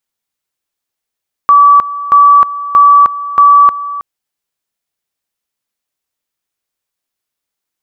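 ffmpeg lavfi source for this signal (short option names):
-f lavfi -i "aevalsrc='pow(10,(-1.5-15.5*gte(mod(t,0.63),0.31))/20)*sin(2*PI*1150*t)':d=2.52:s=44100"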